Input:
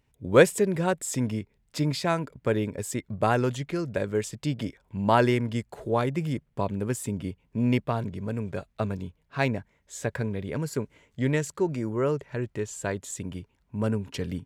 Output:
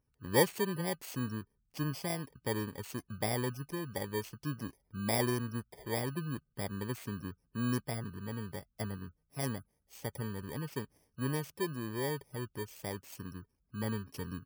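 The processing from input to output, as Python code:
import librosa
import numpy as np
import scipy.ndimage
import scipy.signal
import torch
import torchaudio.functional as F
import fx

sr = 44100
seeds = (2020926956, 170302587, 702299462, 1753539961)

y = fx.bit_reversed(x, sr, seeds[0], block=32)
y = fx.spec_gate(y, sr, threshold_db=-30, keep='strong')
y = fx.high_shelf(y, sr, hz=9600.0, db=-8.5)
y = y * 10.0 ** (-8.5 / 20.0)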